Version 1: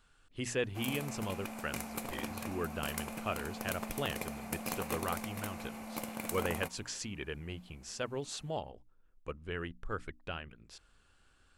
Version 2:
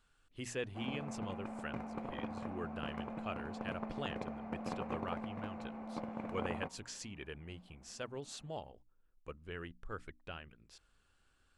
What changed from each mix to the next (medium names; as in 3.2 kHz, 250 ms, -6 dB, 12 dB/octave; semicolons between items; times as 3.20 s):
speech -6.0 dB; background: add low-pass 1.2 kHz 12 dB/octave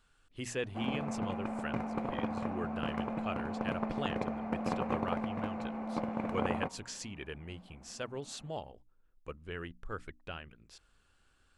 speech +3.5 dB; background +7.0 dB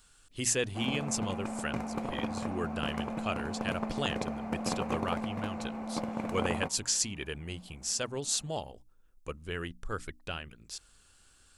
speech +4.0 dB; master: add tone controls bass +1 dB, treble +14 dB